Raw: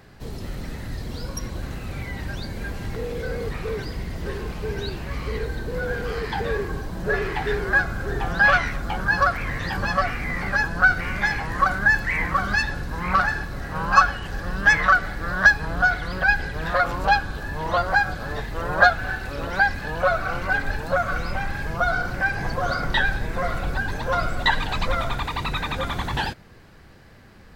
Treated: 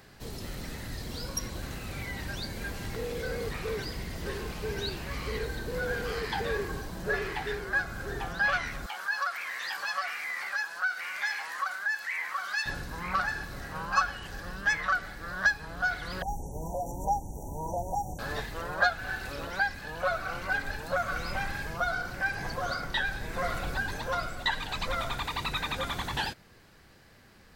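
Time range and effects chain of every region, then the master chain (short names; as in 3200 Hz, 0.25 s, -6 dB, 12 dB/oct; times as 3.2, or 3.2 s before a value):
8.86–12.66 HPF 950 Hz + compressor 1.5:1, threshold -31 dBFS
16.22–18.19 dynamic EQ 580 Hz, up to -5 dB, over -34 dBFS, Q 1 + brick-wall FIR band-stop 1000–5600 Hz
whole clip: high shelf 3100 Hz +7.5 dB; vocal rider within 4 dB 0.5 s; low shelf 170 Hz -4 dB; gain -8.5 dB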